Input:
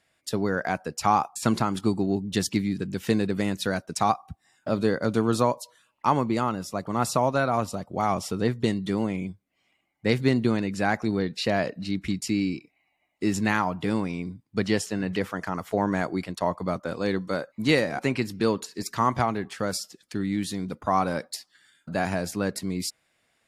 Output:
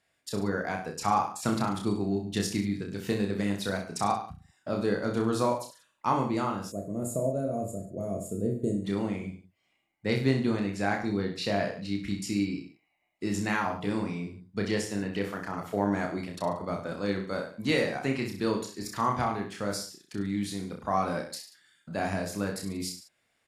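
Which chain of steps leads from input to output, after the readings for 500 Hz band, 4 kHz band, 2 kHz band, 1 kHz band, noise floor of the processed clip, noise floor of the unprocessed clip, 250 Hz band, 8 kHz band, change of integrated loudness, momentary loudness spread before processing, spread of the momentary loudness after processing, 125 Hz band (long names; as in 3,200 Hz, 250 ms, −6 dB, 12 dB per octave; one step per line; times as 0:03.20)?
−3.5 dB, −4.0 dB, −4.0 dB, −4.5 dB, −74 dBFS, −72 dBFS, −3.5 dB, −4.0 dB, −4.0 dB, 8 LU, 9 LU, −3.5 dB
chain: reverse bouncing-ball delay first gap 30 ms, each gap 1.1×, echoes 5
gain on a spectral selection 0:06.72–0:08.85, 710–6,500 Hz −23 dB
level −6 dB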